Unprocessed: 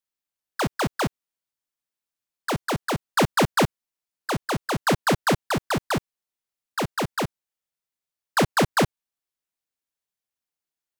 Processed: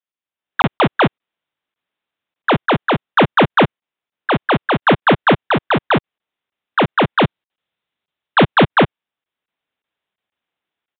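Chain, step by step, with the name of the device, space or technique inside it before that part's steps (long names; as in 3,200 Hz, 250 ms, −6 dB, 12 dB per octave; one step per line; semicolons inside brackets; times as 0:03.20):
call with lost packets (high-pass filter 140 Hz 6 dB per octave; downsampling to 8,000 Hz; automatic gain control gain up to 14.5 dB; dropped packets)
0:07.18–0:08.67: bass and treble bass +3 dB, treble +8 dB
level −1 dB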